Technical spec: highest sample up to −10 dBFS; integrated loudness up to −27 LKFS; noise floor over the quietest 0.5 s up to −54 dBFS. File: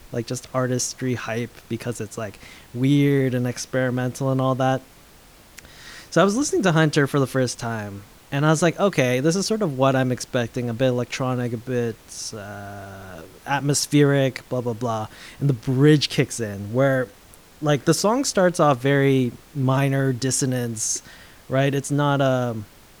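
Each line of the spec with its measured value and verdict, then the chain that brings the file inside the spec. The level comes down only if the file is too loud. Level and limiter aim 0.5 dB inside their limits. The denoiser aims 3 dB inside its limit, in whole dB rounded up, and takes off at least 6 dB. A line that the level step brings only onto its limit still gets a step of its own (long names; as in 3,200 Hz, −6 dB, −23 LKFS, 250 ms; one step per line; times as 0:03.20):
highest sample −5.5 dBFS: out of spec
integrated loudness −22.0 LKFS: out of spec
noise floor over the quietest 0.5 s −49 dBFS: out of spec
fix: level −5.5 dB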